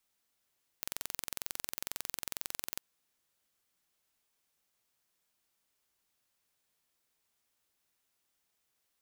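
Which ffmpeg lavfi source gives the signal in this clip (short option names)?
-f lavfi -i "aevalsrc='0.355*eq(mod(n,1995),0)':d=1.99:s=44100"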